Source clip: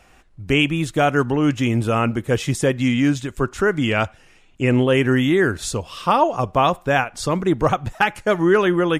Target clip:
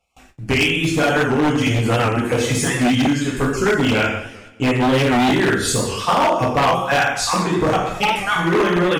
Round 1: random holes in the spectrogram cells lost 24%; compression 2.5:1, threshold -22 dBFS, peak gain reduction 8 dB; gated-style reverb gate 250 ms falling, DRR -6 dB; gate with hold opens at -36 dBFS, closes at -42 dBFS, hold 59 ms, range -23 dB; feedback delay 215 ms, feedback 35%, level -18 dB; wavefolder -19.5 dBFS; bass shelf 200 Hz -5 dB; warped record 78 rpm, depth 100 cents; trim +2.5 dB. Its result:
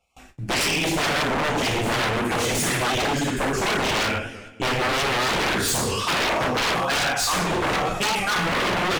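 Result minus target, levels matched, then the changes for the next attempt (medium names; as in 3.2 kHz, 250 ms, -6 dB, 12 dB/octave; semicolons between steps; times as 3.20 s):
wavefolder: distortion +16 dB
change: wavefolder -11.5 dBFS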